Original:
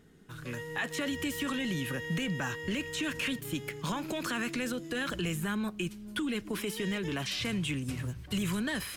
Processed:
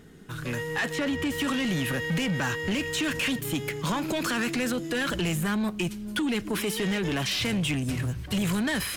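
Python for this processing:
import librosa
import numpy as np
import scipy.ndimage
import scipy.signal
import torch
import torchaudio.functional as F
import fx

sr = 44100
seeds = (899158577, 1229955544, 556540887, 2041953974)

y = fx.high_shelf(x, sr, hz=3900.0, db=-10.0, at=(0.92, 1.38), fade=0.02)
y = 10.0 ** (-31.5 / 20.0) * np.tanh(y / 10.0 ** (-31.5 / 20.0))
y = y * 10.0 ** (9.0 / 20.0)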